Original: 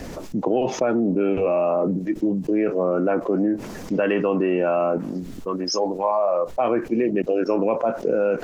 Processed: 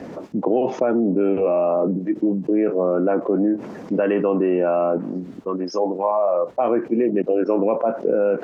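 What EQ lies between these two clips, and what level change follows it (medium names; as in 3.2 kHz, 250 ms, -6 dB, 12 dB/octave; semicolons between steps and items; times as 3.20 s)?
high-pass 180 Hz 12 dB/octave; low-pass 1 kHz 6 dB/octave; +3.0 dB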